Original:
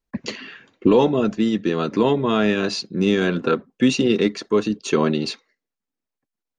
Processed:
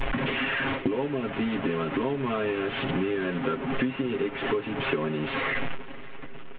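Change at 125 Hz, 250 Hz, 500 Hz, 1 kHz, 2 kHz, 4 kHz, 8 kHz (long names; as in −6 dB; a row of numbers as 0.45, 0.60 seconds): −6.5 dB, −9.0 dB, −8.5 dB, −5.0 dB, 0.0 dB, −7.0 dB, below −40 dB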